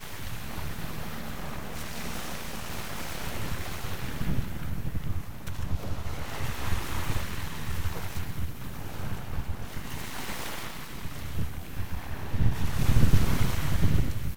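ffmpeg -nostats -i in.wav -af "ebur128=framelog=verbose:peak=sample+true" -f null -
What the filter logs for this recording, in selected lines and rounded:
Integrated loudness:
  I:         -33.5 LUFS
  Threshold: -43.5 LUFS
Loudness range:
  LRA:         7.2 LU
  Threshold: -54.6 LUFS
  LRA low:   -37.3 LUFS
  LRA high:  -30.2 LUFS
Sample peak:
  Peak:       -6.2 dBFS
True peak:
  Peak:       -6.1 dBFS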